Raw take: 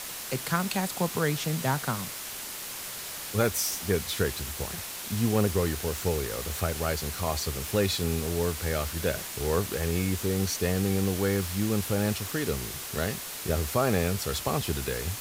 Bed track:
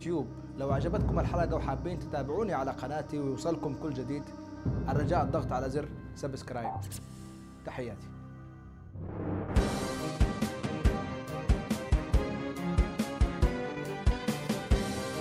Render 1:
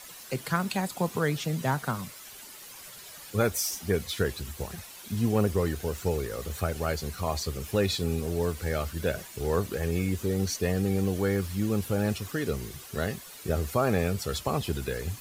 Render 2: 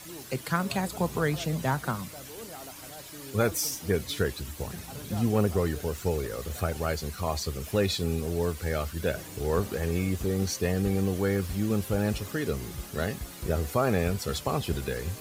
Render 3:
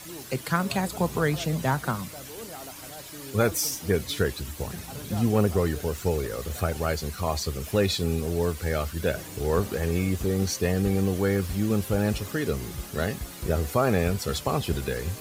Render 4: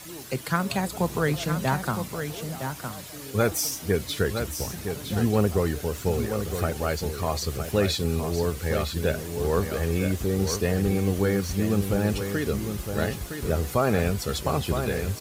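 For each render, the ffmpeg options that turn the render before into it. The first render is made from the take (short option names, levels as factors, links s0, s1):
-af "afftdn=nr=11:nf=-38"
-filter_complex "[1:a]volume=0.237[s0];[0:a][s0]amix=inputs=2:normalize=0"
-af "volume=1.33"
-af "aecho=1:1:963:0.422"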